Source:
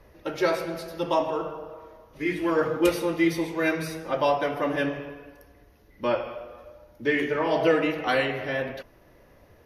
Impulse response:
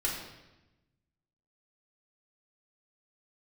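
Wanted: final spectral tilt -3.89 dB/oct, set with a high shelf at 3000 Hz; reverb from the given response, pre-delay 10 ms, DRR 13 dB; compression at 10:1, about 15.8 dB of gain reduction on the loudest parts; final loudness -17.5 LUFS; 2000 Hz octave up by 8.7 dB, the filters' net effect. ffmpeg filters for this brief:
-filter_complex "[0:a]equalizer=f=2k:t=o:g=7.5,highshelf=f=3k:g=8.5,acompressor=threshold=-30dB:ratio=10,asplit=2[a][b];[1:a]atrim=start_sample=2205,adelay=10[c];[b][c]afir=irnorm=-1:irlink=0,volume=-19dB[d];[a][d]amix=inputs=2:normalize=0,volume=16.5dB"

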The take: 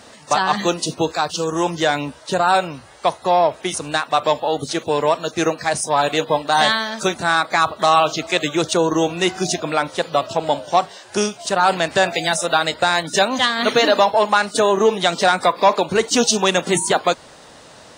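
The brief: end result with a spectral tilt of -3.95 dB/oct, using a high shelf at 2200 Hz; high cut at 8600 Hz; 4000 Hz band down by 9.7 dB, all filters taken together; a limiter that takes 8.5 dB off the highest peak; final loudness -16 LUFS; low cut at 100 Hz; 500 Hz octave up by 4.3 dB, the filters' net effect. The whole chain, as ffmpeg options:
-af "highpass=100,lowpass=8.6k,equalizer=f=500:t=o:g=6,highshelf=f=2.2k:g=-7,equalizer=f=4k:t=o:g=-5.5,volume=4.5dB,alimiter=limit=-5dB:level=0:latency=1"

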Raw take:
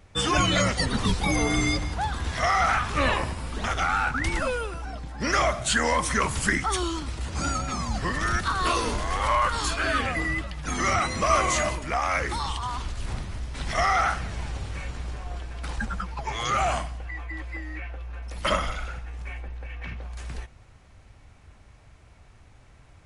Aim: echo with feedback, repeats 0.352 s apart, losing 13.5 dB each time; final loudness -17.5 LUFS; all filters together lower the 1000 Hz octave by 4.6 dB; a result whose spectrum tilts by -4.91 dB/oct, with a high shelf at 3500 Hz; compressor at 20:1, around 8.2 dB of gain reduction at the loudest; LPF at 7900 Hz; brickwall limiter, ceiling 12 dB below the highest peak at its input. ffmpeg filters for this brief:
-af "lowpass=7.9k,equalizer=f=1k:t=o:g=-5.5,highshelf=f=3.5k:g=-5.5,acompressor=threshold=-28dB:ratio=20,alimiter=level_in=4.5dB:limit=-24dB:level=0:latency=1,volume=-4.5dB,aecho=1:1:352|704:0.211|0.0444,volume=20dB"

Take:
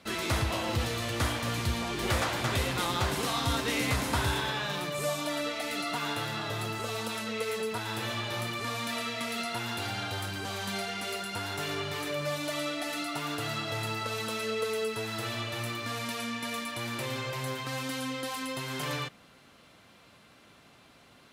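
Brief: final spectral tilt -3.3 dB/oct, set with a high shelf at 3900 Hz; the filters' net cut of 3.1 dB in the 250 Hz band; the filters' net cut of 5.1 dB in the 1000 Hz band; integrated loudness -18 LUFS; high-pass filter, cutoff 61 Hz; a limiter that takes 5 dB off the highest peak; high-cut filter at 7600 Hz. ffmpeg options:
-af "highpass=61,lowpass=7.6k,equalizer=f=250:t=o:g=-3.5,equalizer=f=1k:t=o:g=-7,highshelf=f=3.9k:g=3.5,volume=15.5dB,alimiter=limit=-7.5dB:level=0:latency=1"

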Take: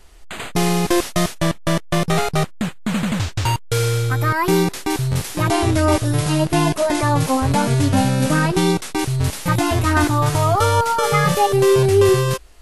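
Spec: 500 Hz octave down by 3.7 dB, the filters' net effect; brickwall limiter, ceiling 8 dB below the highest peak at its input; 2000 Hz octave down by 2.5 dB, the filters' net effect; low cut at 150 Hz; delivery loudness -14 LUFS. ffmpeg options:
-af "highpass=150,equalizer=f=500:t=o:g=-5,equalizer=f=2k:t=o:g=-3,volume=9.5dB,alimiter=limit=-4dB:level=0:latency=1"

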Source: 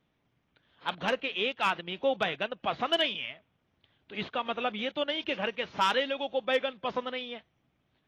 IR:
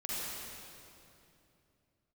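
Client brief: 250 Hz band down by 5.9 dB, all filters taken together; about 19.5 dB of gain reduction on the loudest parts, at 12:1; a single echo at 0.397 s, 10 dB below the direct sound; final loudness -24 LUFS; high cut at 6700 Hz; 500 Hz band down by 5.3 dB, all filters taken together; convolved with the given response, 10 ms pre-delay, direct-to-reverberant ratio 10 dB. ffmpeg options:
-filter_complex "[0:a]lowpass=6.7k,equalizer=f=250:t=o:g=-6,equalizer=f=500:t=o:g=-5,acompressor=threshold=-43dB:ratio=12,aecho=1:1:397:0.316,asplit=2[a][b];[1:a]atrim=start_sample=2205,adelay=10[c];[b][c]afir=irnorm=-1:irlink=0,volume=-14dB[d];[a][d]amix=inputs=2:normalize=0,volume=22.5dB"

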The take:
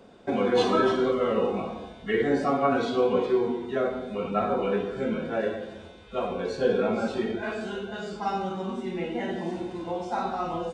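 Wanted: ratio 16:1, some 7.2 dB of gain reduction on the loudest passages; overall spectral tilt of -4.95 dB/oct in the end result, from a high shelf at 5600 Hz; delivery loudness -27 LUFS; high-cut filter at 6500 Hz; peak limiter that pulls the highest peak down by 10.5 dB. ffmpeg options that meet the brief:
-af "lowpass=6.5k,highshelf=f=5.6k:g=-5,acompressor=threshold=-25dB:ratio=16,volume=8.5dB,alimiter=limit=-18.5dB:level=0:latency=1"

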